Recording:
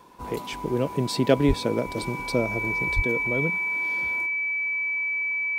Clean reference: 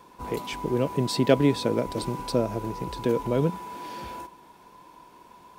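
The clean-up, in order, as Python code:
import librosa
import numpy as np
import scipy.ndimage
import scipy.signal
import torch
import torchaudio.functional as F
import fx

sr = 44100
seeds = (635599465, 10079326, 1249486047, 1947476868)

y = fx.notch(x, sr, hz=2300.0, q=30.0)
y = fx.fix_deplosive(y, sr, at_s=(1.47, 2.95))
y = fx.gain(y, sr, db=fx.steps((0.0, 0.0), (2.96, 4.0)))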